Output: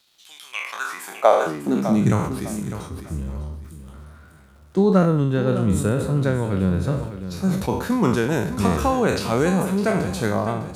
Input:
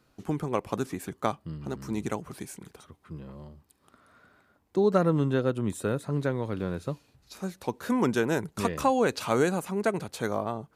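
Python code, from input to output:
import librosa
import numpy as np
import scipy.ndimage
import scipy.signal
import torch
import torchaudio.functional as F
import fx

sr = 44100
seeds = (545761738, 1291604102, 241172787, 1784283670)

p1 = fx.spec_trails(x, sr, decay_s=0.55)
p2 = fx.dynamic_eq(p1, sr, hz=190.0, q=6.4, threshold_db=-45.0, ratio=4.0, max_db=7)
p3 = fx.rider(p2, sr, range_db=3, speed_s=0.5)
p4 = p2 + (p3 * 10.0 ** (-0.5 / 20.0))
p5 = fx.low_shelf(p4, sr, hz=150.0, db=5.5)
p6 = fx.filter_sweep_highpass(p5, sr, from_hz=3500.0, to_hz=68.0, start_s=0.4, end_s=2.37, q=4.1)
p7 = fx.dmg_crackle(p6, sr, seeds[0], per_s=340.0, level_db=-47.0)
p8 = p7 + fx.echo_feedback(p7, sr, ms=604, feedback_pct=27, wet_db=-11.5, dry=0)
p9 = fx.sustainer(p8, sr, db_per_s=65.0)
y = p9 * 10.0 ** (-3.5 / 20.0)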